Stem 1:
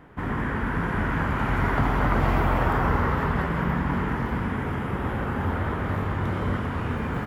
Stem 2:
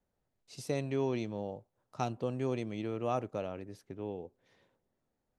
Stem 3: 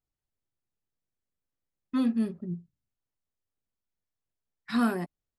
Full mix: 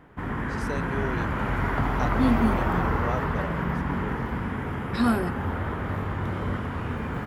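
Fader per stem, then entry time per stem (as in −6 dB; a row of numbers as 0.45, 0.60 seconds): −2.5, 0.0, +3.0 decibels; 0.00, 0.00, 0.25 seconds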